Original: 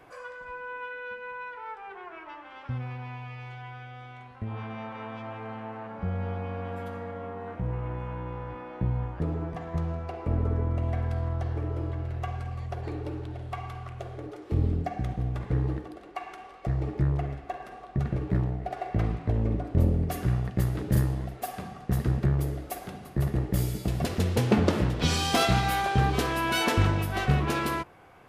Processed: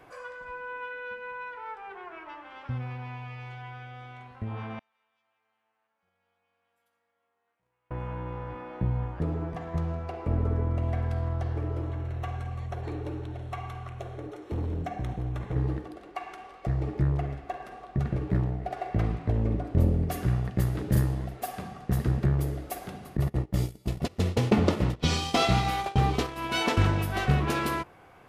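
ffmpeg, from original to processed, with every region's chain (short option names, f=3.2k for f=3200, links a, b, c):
-filter_complex "[0:a]asettb=1/sr,asplit=3[a][b][c];[a]atrim=end=4.794[d];[b]atrim=start=4.79:end=7.91,asetpts=PTS-STARTPTS,afade=t=in:d=0.004:c=qsin,afade=t=out:st=3.116:d=0.004:c=qsin,agate=range=-20dB:threshold=-26dB:ratio=16:release=100:detection=peak,aderivative[e];[c]atrim=start=7.906[f];[d][e]acrossfade=d=0.004:c1=hsin:c2=qsin[g];[g][f]acrossfade=d=0.004:c1=qsin:c2=hsin,asettb=1/sr,asplit=3[h][i][j];[h]atrim=end=11.814[k];[i]atrim=start=11.81:end=15.56,asetpts=PTS-STARTPTS,afade=t=in:d=0.004:c=qsin,afade=t=out:st=3.746:d=0.004:c=qsin,asoftclip=type=hard:threshold=-27.5dB,asuperstop=centerf=4800:order=8:qfactor=7.6[l];[j]atrim=start=15.556[m];[k][l]acrossfade=d=0.004:c1=hsin:c2=qsin[n];[n][m]acrossfade=d=0.004:c1=qsin:c2=hsin,asettb=1/sr,asplit=3[o][p][q];[o]atrim=end=23.174[r];[p]atrim=start=23.17:end=26.77,asetpts=PTS-STARTPTS,afade=t=in:d=0.004:c=qsin,afade=t=out:st=3.596:d=0.004:c=qsin,bandreject=f=1.6k:w=8.9,agate=range=-20dB:threshold=-28dB:ratio=16:release=100:detection=peak,acrossover=split=7300[s][t];[t]acompressor=threshold=-50dB:ratio=4:attack=1:release=60[u];[s][u]amix=inputs=2:normalize=0[v];[q]atrim=start=26.766[w];[r][v]acrossfade=d=0.004:c1=hsin:c2=qsin[x];[x][w]acrossfade=d=0.004:c1=qsin:c2=hsin"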